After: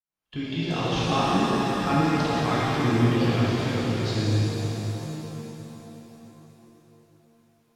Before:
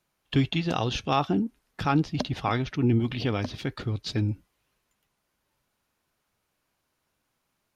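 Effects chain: opening faded in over 0.80 s; shimmer reverb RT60 3.8 s, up +7 st, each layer -8 dB, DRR -8.5 dB; gain -5.5 dB

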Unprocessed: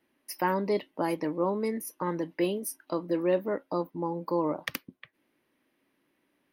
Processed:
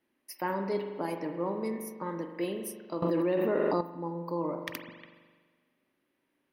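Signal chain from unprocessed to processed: reverb RT60 1.5 s, pre-delay 41 ms, DRR 5 dB; 3.02–3.81 fast leveller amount 100%; gain -5.5 dB

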